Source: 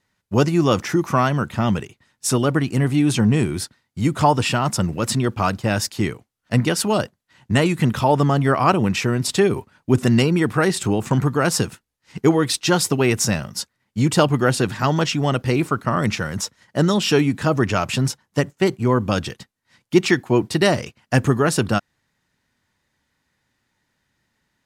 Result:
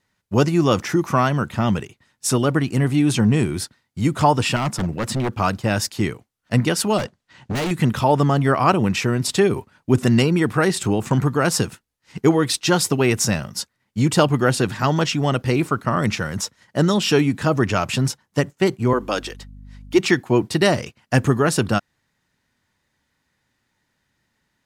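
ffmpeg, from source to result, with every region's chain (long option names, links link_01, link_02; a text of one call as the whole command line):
ffmpeg -i in.wav -filter_complex "[0:a]asettb=1/sr,asplit=3[link_01][link_02][link_03];[link_01]atrim=end=4.564[link_04];[link_02]atrim=start=4.56:end=5.33,asetpts=PTS-STARTPTS,afade=type=in:duration=0.004:curve=qsin,afade=type=out:start_time=0.766:duration=0.004:curve=qsin,highshelf=frequency=3100:gain=-6,aeval=exprs='0.158*(abs(mod(val(0)/0.158+3,4)-2)-1)':channel_layout=same[link_05];[link_03]atrim=start=5.326[link_06];[link_04][link_05]acrossfade=duration=0.004:curve1=hsin:curve2=qsin[link_07];[link_07][link_06]acrossfade=duration=0.004:curve1=qsin:curve2=hsin,asettb=1/sr,asplit=3[link_08][link_09][link_10];[link_08]atrim=end=6.984[link_11];[link_09]atrim=start=6.98:end=7.71,asetpts=PTS-STARTPTS,afade=type=in:duration=0.004:curve=qsin,afade=type=out:start_time=0.726:duration=0.004:curve=qsin,lowpass=7200,acontrast=47,volume=21.5dB,asoftclip=hard,volume=-21.5dB[link_12];[link_10]atrim=start=7.706[link_13];[link_11][link_12]acrossfade=duration=0.004:curve1=hsin:curve2=qsin[link_14];[link_14][link_13]acrossfade=duration=0.004:curve1=qsin:curve2=hsin,asettb=1/sr,asplit=3[link_15][link_16][link_17];[link_15]atrim=end=18.934[link_18];[link_16]atrim=start=18.93:end=19.99,asetpts=PTS-STARTPTS,afade=type=in:duration=0.004:curve=qsin,afade=type=out:start_time=1.056:duration=0.004:curve=qsin,highpass=frequency=280:width=0.5412,highpass=frequency=280:width=1.3066,aeval=exprs='val(0)+0.0112*(sin(2*PI*50*n/s)+sin(2*PI*2*50*n/s)/2+sin(2*PI*3*50*n/s)/3+sin(2*PI*4*50*n/s)/4+sin(2*PI*5*50*n/s)/5)':channel_layout=same[link_19];[link_17]atrim=start=19.986[link_20];[link_18][link_19]acrossfade=duration=0.004:curve1=hsin:curve2=qsin[link_21];[link_21][link_20]acrossfade=duration=0.004:curve1=qsin:curve2=hsin" out.wav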